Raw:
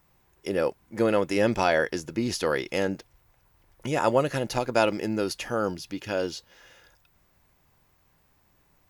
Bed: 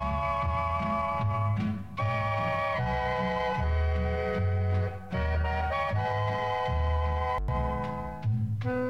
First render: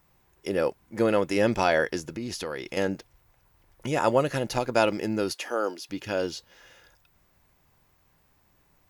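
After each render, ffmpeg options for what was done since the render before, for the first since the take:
-filter_complex "[0:a]asettb=1/sr,asplit=3[s0][s1][s2];[s0]atrim=end=2.114[s3];[s1]atrim=start=2.11:end=2.77,asetpts=PTS-STARTPTS,afade=t=in:d=0.004:c=qsin,afade=t=out:st=0.656:d=0.004:c=qsin,acompressor=threshold=0.0282:ratio=3:attack=3.2:release=140:knee=1:detection=peak[s4];[s2]atrim=start=2.766[s5];[s3][s4]acrossfade=d=0.004:c1=hsin:c2=qsin[s6];[s6][s5]acrossfade=d=0.004:c1=qsin:c2=hsin,asettb=1/sr,asplit=3[s7][s8][s9];[s7]atrim=end=5.344[s10];[s8]atrim=start=5.34:end=5.89,asetpts=PTS-STARTPTS,afade=t=in:d=0.004:c=qsin,afade=t=out:st=0.546:d=0.004:c=qsin,highpass=f=300:w=0.5412,highpass=f=300:w=1.3066[s11];[s9]atrim=start=5.886[s12];[s10][s11]acrossfade=d=0.004:c1=hsin:c2=qsin[s13];[s13][s12]acrossfade=d=0.004:c1=qsin:c2=hsin"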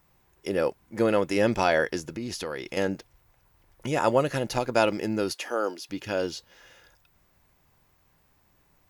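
-af anull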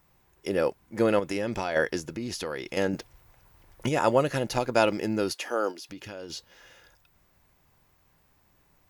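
-filter_complex "[0:a]asettb=1/sr,asplit=3[s0][s1][s2];[s0]atrim=end=1.194[s3];[s1]atrim=start=1.19:end=1.76,asetpts=PTS-STARTPTS,afade=t=in:d=0.004:c=qsin,afade=t=out:st=0.566:d=0.004:c=qsin,acompressor=threshold=0.0501:ratio=4:attack=3.2:release=140:knee=1:detection=peak[s4];[s2]atrim=start=1.756[s5];[s3][s4]acrossfade=d=0.004:c1=hsin:c2=qsin[s6];[s6][s5]acrossfade=d=0.004:c1=qsin:c2=hsin,asettb=1/sr,asplit=3[s7][s8][s9];[s7]atrim=end=2.934[s10];[s8]atrim=start=2.93:end=3.89,asetpts=PTS-STARTPTS,afade=t=in:d=0.004:c=qsin,afade=t=out:st=0.956:d=0.004:c=qsin,acontrast=32[s11];[s9]atrim=start=3.886[s12];[s10][s11]acrossfade=d=0.004:c1=hsin:c2=qsin[s13];[s13][s12]acrossfade=d=0.004:c1=qsin:c2=hsin,asplit=3[s14][s15][s16];[s14]afade=t=out:st=5.71:d=0.02[s17];[s15]acompressor=threshold=0.0126:ratio=4:attack=3.2:release=140:knee=1:detection=peak,afade=t=in:st=5.71:d=0.02,afade=t=out:st=6.29:d=0.02[s18];[s16]afade=t=in:st=6.29:d=0.02[s19];[s17][s18][s19]amix=inputs=3:normalize=0"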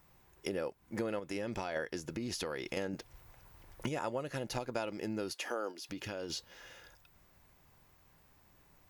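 -af "acompressor=threshold=0.0178:ratio=5"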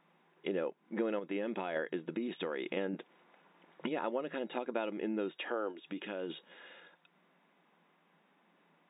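-af "afftfilt=real='re*between(b*sr/4096,160,3800)':imag='im*between(b*sr/4096,160,3800)':win_size=4096:overlap=0.75,adynamicequalizer=threshold=0.00398:dfrequency=350:dqfactor=1.7:tfrequency=350:tqfactor=1.7:attack=5:release=100:ratio=0.375:range=2:mode=boostabove:tftype=bell"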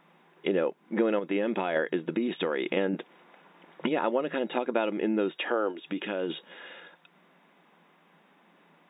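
-af "volume=2.66"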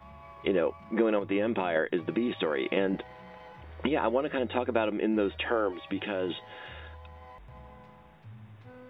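-filter_complex "[1:a]volume=0.1[s0];[0:a][s0]amix=inputs=2:normalize=0"

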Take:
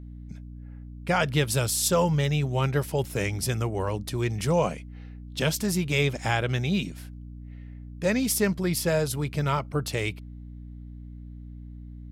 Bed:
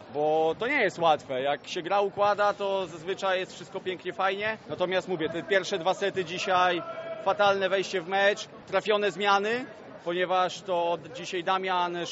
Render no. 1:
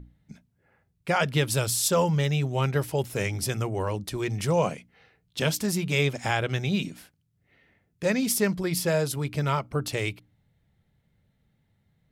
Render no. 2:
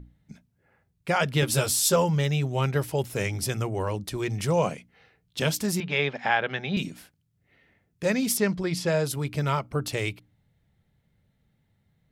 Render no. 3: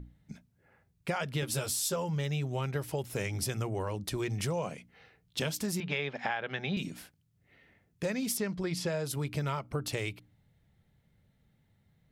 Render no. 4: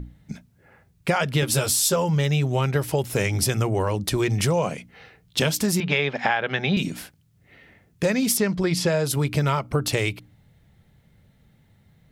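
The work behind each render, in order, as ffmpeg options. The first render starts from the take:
-af "bandreject=f=60:t=h:w=6,bandreject=f=120:t=h:w=6,bandreject=f=180:t=h:w=6,bandreject=f=240:t=h:w=6,bandreject=f=300:t=h:w=6"
-filter_complex "[0:a]asettb=1/sr,asplit=3[s0][s1][s2];[s0]atrim=end=1.414[s3];[s1]atrim=start=1.41:end=1.96,asetpts=PTS-STARTPTS,afade=t=in:d=0.004:c=qsin,afade=t=out:st=0.546:d=0.004:c=qsin,asplit=2[s4][s5];[s5]adelay=13,volume=0.794[s6];[s4][s6]amix=inputs=2:normalize=0,atrim=end_sample=24255[s7];[s2]atrim=start=1.956[s8];[s3][s7]acrossfade=d=0.004:c1=hsin:c2=qsin[s9];[s9][s8]acrossfade=d=0.004:c1=qsin:c2=hsin,asettb=1/sr,asplit=3[s10][s11][s12];[s10]atrim=end=5.804[s13];[s11]atrim=start=5.8:end=6.77,asetpts=PTS-STARTPTS,afade=t=in:d=0.004:c=qsin,afade=t=out:st=0.966:d=0.004:c=qsin,highpass=f=170:w=0.5412,highpass=f=170:w=1.3066,equalizer=f=320:t=q:w=4:g=-8,equalizer=f=830:t=q:w=4:g=5,equalizer=f=1700:t=q:w=4:g=6,lowpass=f=4100:w=0.5412,lowpass=f=4100:w=1.3066[s14];[s12]atrim=start=6.766[s15];[s13][s14]acrossfade=d=0.004:c1=hsin:c2=qsin[s16];[s16][s15]acrossfade=d=0.004:c1=qsin:c2=hsin,asettb=1/sr,asplit=3[s17][s18][s19];[s17]atrim=end=8.374[s20];[s18]atrim=start=8.37:end=9.04,asetpts=PTS-STARTPTS,afade=t=in:d=0.004:c=qsin,afade=t=out:st=0.666:d=0.004:c=qsin,lowpass=6600[s21];[s19]atrim=start=9.036[s22];[s20][s21]acrossfade=d=0.004:c1=hsin:c2=qsin[s23];[s23][s22]acrossfade=d=0.004:c1=qsin:c2=hsin"
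-af "acompressor=threshold=0.0316:ratio=6"
-af "volume=3.55"

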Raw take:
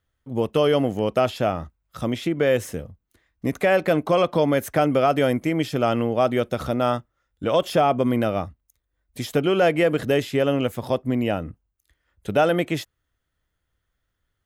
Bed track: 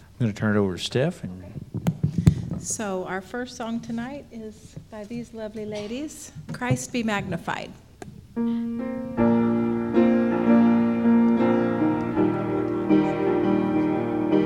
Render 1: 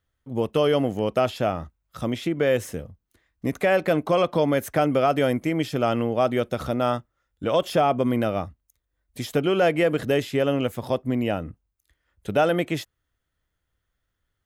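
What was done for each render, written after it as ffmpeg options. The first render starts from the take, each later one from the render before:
-af "volume=0.841"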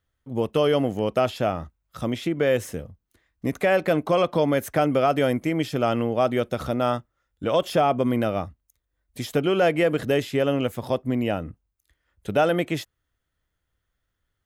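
-af anull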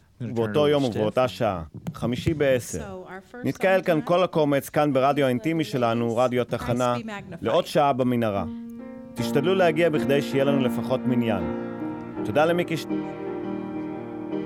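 -filter_complex "[1:a]volume=0.355[s0];[0:a][s0]amix=inputs=2:normalize=0"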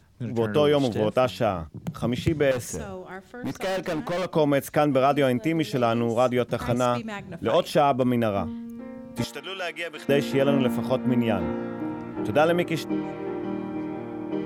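-filter_complex "[0:a]asettb=1/sr,asplit=3[s0][s1][s2];[s0]atrim=end=2.514[s3];[s1]atrim=start=2.51:end=4.28,asetpts=PTS-STARTPTS,afade=t=in:d=0.004:c=qsin,afade=t=out:st=1.766:d=0.004:c=qsin,volume=17.8,asoftclip=hard,volume=0.0562[s4];[s2]atrim=start=4.276[s5];[s3][s4]acrossfade=d=0.004:c1=hsin:c2=qsin[s6];[s6][s5]acrossfade=d=0.004:c1=qsin:c2=hsin,asettb=1/sr,asplit=3[s7][s8][s9];[s7]atrim=end=9.244[s10];[s8]atrim=start=9.24:end=10.09,asetpts=PTS-STARTPTS,afade=t=in:d=0.004:c=qsin,afade=t=out:st=0.846:d=0.004:c=qsin,bandpass=f=5200:t=q:w=0.51[s11];[s9]atrim=start=10.086[s12];[s10][s11]acrossfade=d=0.004:c1=hsin:c2=qsin[s13];[s13][s12]acrossfade=d=0.004:c1=qsin:c2=hsin"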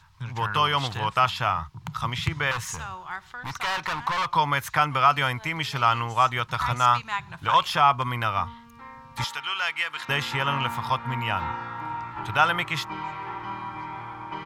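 -af "firequalizer=gain_entry='entry(140,0);entry(210,-16);entry(600,-13);entry(950,13);entry(1600,6);entry(4100,6);entry(9000,-2)':delay=0.05:min_phase=1"

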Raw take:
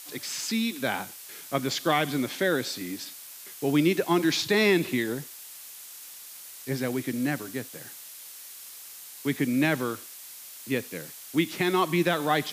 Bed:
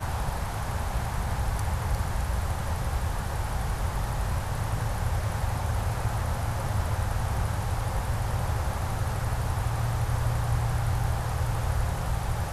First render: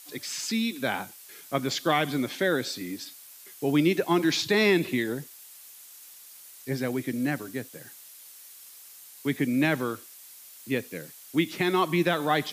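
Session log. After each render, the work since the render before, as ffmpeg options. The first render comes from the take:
-af "afftdn=nr=6:nf=-45"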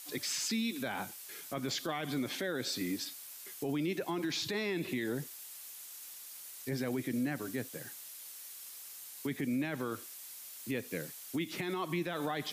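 -af "acompressor=threshold=0.0355:ratio=5,alimiter=level_in=1.33:limit=0.0631:level=0:latency=1:release=11,volume=0.75"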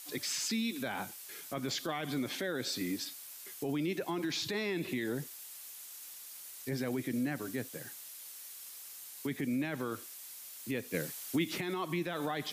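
-filter_complex "[0:a]asplit=3[s0][s1][s2];[s0]atrim=end=10.942[s3];[s1]atrim=start=10.938:end=11.582,asetpts=PTS-STARTPTS,volume=1.58[s4];[s2]atrim=start=11.578[s5];[s3][s4]acrossfade=d=0.004:c1=hsin:c2=hsin[s6];[s6][s5]acrossfade=d=0.004:c1=hsin:c2=hsin"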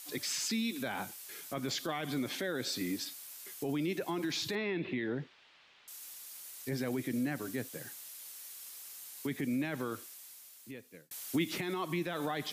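-filter_complex "[0:a]asettb=1/sr,asplit=3[s0][s1][s2];[s0]atrim=end=4.554[s3];[s1]atrim=start=4.55:end=5.88,asetpts=PTS-STARTPTS,afade=t=in:d=0.004:c=qsin,afade=t=out:st=1.326:d=0.004:c=qsin,lowpass=f=3400:w=0.5412,lowpass=f=3400:w=1.3066[s4];[s2]atrim=start=5.876[s5];[s3][s4]acrossfade=d=0.004:c1=hsin:c2=qsin[s6];[s6][s5]acrossfade=d=0.004:c1=qsin:c2=hsin,asplit=2[s7][s8];[s7]atrim=end=11.11,asetpts=PTS-STARTPTS,afade=t=out:st=9.83:d=1.28[s9];[s8]atrim=start=11.11,asetpts=PTS-STARTPTS,afade=t=in:d=0.004:c=hsin[s10];[s9][s10]concat=n=2:v=0:a=1"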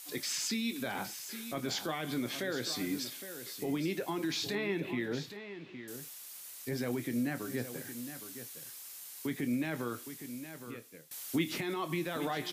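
-filter_complex "[0:a]asplit=2[s0][s1];[s1]adelay=25,volume=0.282[s2];[s0][s2]amix=inputs=2:normalize=0,aecho=1:1:814:0.282"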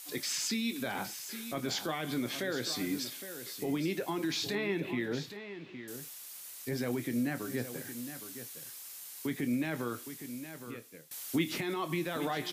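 -af "volume=1.12"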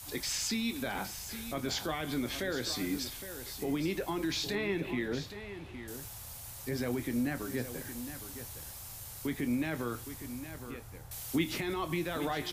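-filter_complex "[1:a]volume=0.0668[s0];[0:a][s0]amix=inputs=2:normalize=0"

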